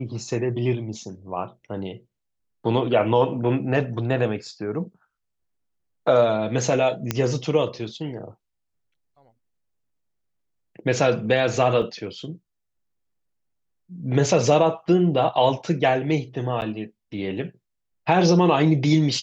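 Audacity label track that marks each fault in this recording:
7.110000	7.110000	pop -7 dBFS
11.820000	11.820000	dropout 3.2 ms
16.610000	16.620000	dropout 9.3 ms

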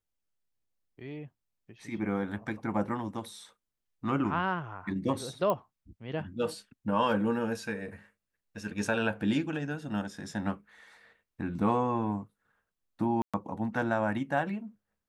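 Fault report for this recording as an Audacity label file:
5.500000	5.500000	pop -17 dBFS
13.220000	13.340000	dropout 116 ms

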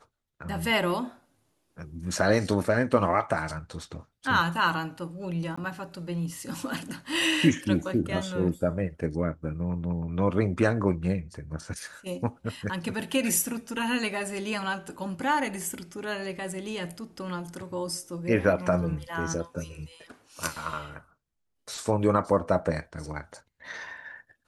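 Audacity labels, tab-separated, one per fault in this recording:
5.560000	5.580000	dropout 15 ms

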